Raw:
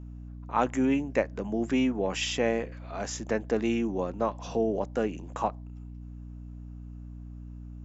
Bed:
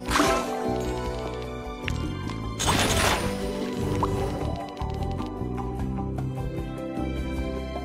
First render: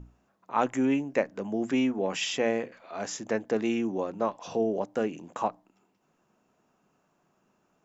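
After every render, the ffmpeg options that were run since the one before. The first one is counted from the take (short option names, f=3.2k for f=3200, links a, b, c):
-af "bandreject=f=60:t=h:w=6,bandreject=f=120:t=h:w=6,bandreject=f=180:t=h:w=6,bandreject=f=240:t=h:w=6,bandreject=f=300:t=h:w=6"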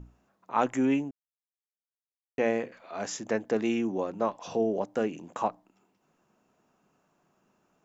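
-filter_complex "[0:a]asplit=3[a][b][c];[a]atrim=end=1.11,asetpts=PTS-STARTPTS,afade=t=out:st=1.106:d=0.004:c=hsin[d];[b]atrim=start=1.11:end=2.38,asetpts=PTS-STARTPTS,volume=0[e];[c]atrim=start=2.38,asetpts=PTS-STARTPTS,afade=t=in:d=0.004:c=hsin[f];[d][e][f]concat=n=3:v=0:a=1"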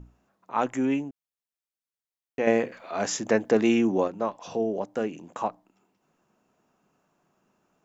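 -filter_complex "[0:a]asettb=1/sr,asplit=3[a][b][c];[a]atrim=end=2.474[d];[b]atrim=start=2.47:end=4.08,asetpts=PTS-STARTPTS,afade=t=in:d=0.004:c=qsin,afade=t=out:st=1.606:d=0.004:c=qsin,acontrast=68[e];[c]atrim=start=4.076[f];[d][e]acrossfade=d=0.004:c1=hsin:c2=qsin[g];[g][f]acrossfade=d=0.004:c1=qsin:c2=hsin"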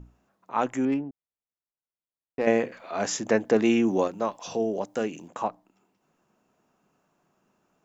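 -filter_complex "[0:a]asettb=1/sr,asplit=3[a][b][c];[a]atrim=end=0.854[d];[b]atrim=start=0.85:end=2.46,asetpts=PTS-STARTPTS,afade=t=in:d=0.004:c=qsin,afade=t=out:st=1.606:d=0.004:c=qsin,adynamicsmooth=sensitivity=1.5:basefreq=1.3k[e];[c]atrim=start=2.456[f];[d][e]acrossfade=d=0.004:c1=hsin:c2=qsin[g];[g][f]acrossfade=d=0.004:c1=qsin:c2=hsin,asettb=1/sr,asplit=3[h][i][j];[h]atrim=end=3.874[k];[i]atrim=start=3.87:end=5.28,asetpts=PTS-STARTPTS,afade=t=in:d=0.004:c=qsin,afade=t=out:st=1.406:d=0.004:c=qsin,highshelf=f=3.4k:g=9.5[l];[j]atrim=start=5.276[m];[k][l]acrossfade=d=0.004:c1=hsin:c2=qsin[n];[n][m]acrossfade=d=0.004:c1=qsin:c2=hsin"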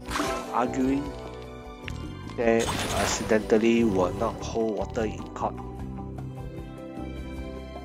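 -filter_complex "[1:a]volume=-6.5dB[a];[0:a][a]amix=inputs=2:normalize=0"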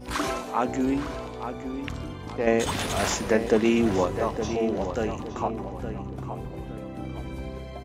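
-filter_complex "[0:a]asplit=2[a][b];[b]adelay=866,lowpass=f=3.2k:p=1,volume=-9dB,asplit=2[c][d];[d]adelay=866,lowpass=f=3.2k:p=1,volume=0.36,asplit=2[e][f];[f]adelay=866,lowpass=f=3.2k:p=1,volume=0.36,asplit=2[g][h];[h]adelay=866,lowpass=f=3.2k:p=1,volume=0.36[i];[a][c][e][g][i]amix=inputs=5:normalize=0"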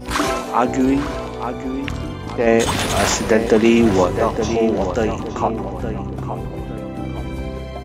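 -af "volume=8.5dB,alimiter=limit=-2dB:level=0:latency=1"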